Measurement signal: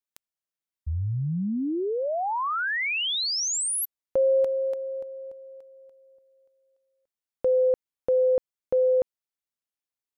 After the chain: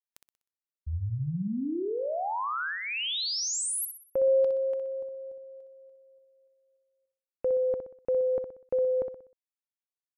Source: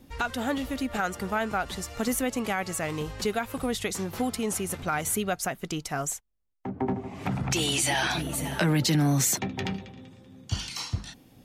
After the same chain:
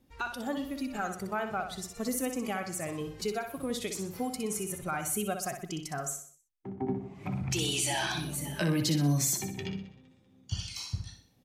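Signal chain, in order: dynamic EQ 2000 Hz, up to -6 dB, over -47 dBFS, Q 3.8; spectral noise reduction 9 dB; feedback echo 62 ms, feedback 42%, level -7.5 dB; gain -4.5 dB

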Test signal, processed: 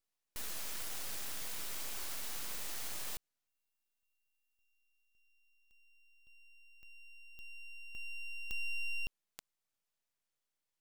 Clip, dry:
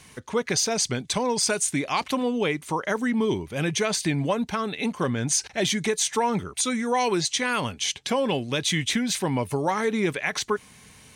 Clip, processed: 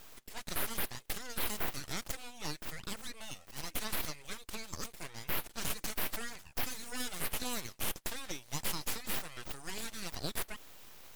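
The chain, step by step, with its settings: differentiator; limiter -24 dBFS; full-wave rectifier; gain +2.5 dB

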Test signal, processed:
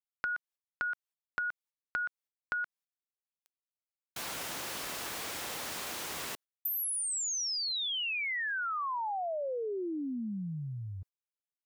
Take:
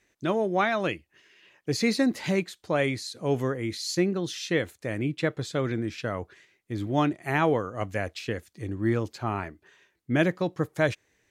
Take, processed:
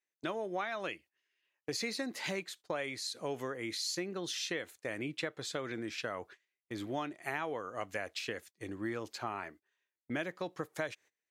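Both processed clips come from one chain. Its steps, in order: HPF 630 Hz 6 dB/oct; gate -50 dBFS, range -23 dB; compressor 5:1, threshold -34 dBFS

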